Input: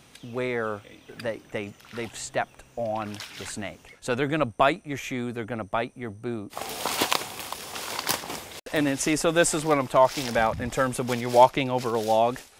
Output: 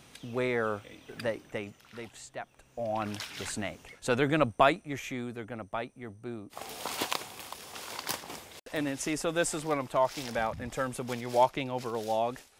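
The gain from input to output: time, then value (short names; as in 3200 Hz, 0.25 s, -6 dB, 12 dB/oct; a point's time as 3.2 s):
1.29 s -1.5 dB
2.38 s -13.5 dB
3.04 s -1 dB
4.49 s -1 dB
5.47 s -8 dB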